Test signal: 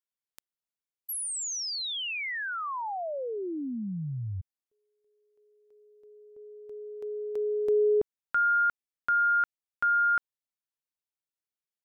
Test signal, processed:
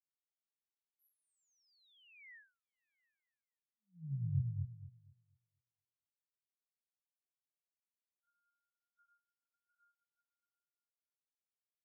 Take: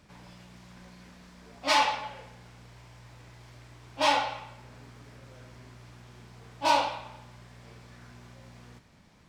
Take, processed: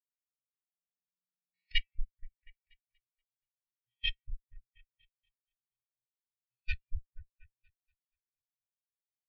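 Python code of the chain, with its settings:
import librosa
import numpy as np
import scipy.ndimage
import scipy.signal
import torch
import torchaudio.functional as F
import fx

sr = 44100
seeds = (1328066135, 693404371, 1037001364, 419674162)

p1 = fx.spec_swells(x, sr, rise_s=0.51)
p2 = fx.level_steps(p1, sr, step_db=20)
p3 = fx.cheby_harmonics(p2, sr, harmonics=(6,), levels_db=(-20,), full_scale_db=-9.0)
p4 = scipy.signal.sosfilt(scipy.signal.cheby1(3, 1.0, [150.0, 1800.0], 'bandstop', fs=sr, output='sos'), p3)
p5 = fx.doubler(p4, sr, ms=50.0, db=-14)
p6 = p5 + fx.echo_opening(p5, sr, ms=239, hz=750, octaves=1, feedback_pct=70, wet_db=0, dry=0)
y = fx.spectral_expand(p6, sr, expansion=4.0)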